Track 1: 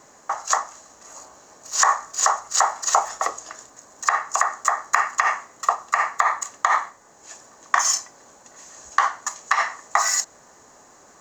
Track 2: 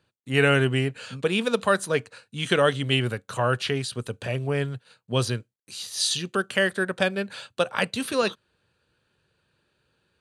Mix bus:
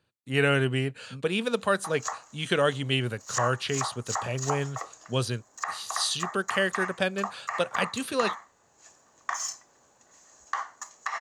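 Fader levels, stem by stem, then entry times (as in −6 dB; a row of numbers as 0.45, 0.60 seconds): −12.5, −3.5 decibels; 1.55, 0.00 seconds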